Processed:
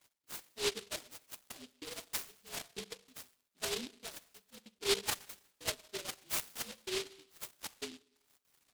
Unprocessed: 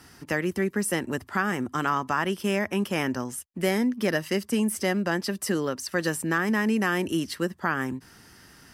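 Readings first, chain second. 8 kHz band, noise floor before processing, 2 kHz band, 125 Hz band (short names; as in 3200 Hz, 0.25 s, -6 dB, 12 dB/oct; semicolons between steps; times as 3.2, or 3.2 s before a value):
-5.5 dB, -53 dBFS, -17.5 dB, -25.5 dB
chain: inharmonic rescaling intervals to 118%; de-esser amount 65%; reverb removal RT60 0.74 s; step gate "x..xx..xxx.xxxxx" 190 bpm -60 dB; notch comb 180 Hz; wah 0.98 Hz 370–2200 Hz, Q 16; Schroeder reverb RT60 0.75 s, combs from 32 ms, DRR 16.5 dB; noise-modulated delay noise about 3400 Hz, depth 0.35 ms; gain +6.5 dB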